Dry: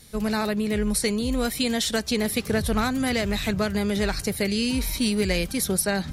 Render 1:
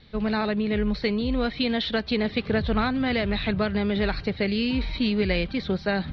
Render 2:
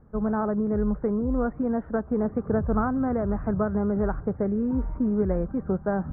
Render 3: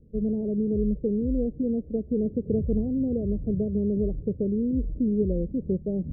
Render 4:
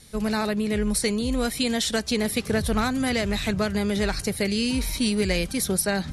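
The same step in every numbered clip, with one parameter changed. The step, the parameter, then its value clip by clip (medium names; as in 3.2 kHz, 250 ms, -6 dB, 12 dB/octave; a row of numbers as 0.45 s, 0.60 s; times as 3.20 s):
steep low-pass, frequency: 4.2 kHz, 1.4 kHz, 520 Hz, 12 kHz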